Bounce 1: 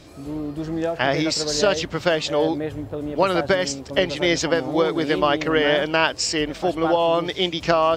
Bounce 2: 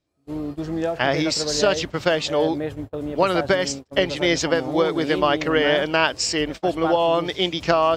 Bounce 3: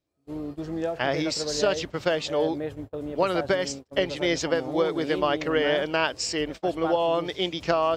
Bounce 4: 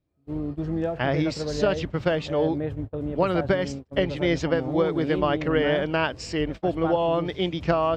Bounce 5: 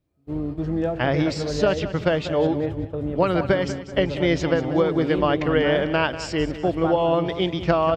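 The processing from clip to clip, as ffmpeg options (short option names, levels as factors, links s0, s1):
-af "agate=range=0.0251:threshold=0.0316:ratio=16:detection=peak"
-af "equalizer=f=470:w=1.5:g=2.5,volume=0.501"
-af "bass=f=250:g=10,treble=f=4000:g=-11"
-af "aecho=1:1:191|382|573|764:0.224|0.0828|0.0306|0.0113,volume=1.33"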